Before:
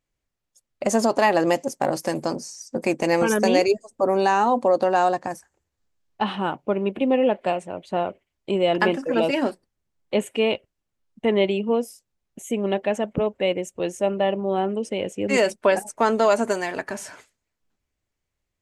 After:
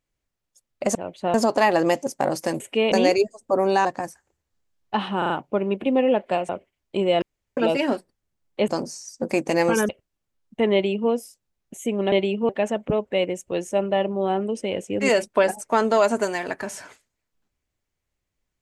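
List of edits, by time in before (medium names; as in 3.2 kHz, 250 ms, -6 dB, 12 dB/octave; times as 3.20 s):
2.21–3.42 s: swap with 10.22–10.54 s
4.35–5.12 s: delete
6.45 s: stutter 0.04 s, 4 plays
7.64–8.03 s: move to 0.95 s
8.76–9.11 s: room tone
11.38–11.75 s: copy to 12.77 s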